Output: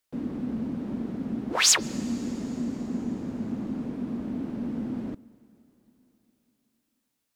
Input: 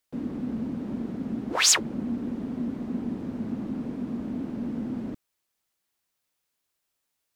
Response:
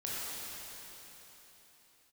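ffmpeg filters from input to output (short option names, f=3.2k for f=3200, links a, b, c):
-filter_complex "[0:a]asplit=2[a][b];[1:a]atrim=start_sample=2205,adelay=141[c];[b][c]afir=irnorm=-1:irlink=0,volume=-25.5dB[d];[a][d]amix=inputs=2:normalize=0"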